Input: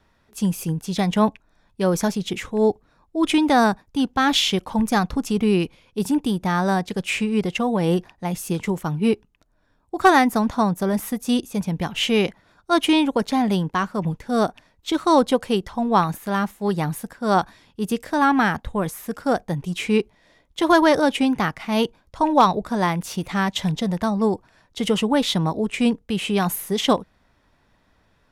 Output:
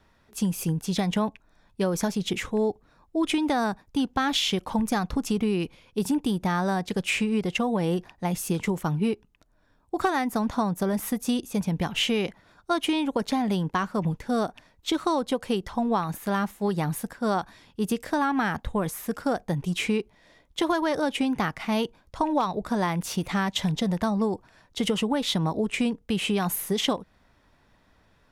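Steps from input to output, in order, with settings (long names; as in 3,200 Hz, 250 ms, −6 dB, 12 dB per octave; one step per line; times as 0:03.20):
downward compressor 10 to 1, threshold −21 dBFS, peak gain reduction 12.5 dB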